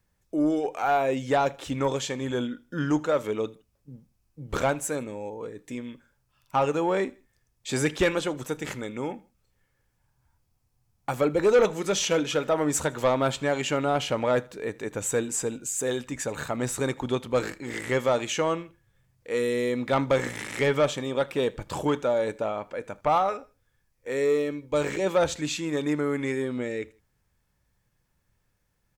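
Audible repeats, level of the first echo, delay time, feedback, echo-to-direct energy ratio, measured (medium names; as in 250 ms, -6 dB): 2, -23.5 dB, 79 ms, 36%, -23.0 dB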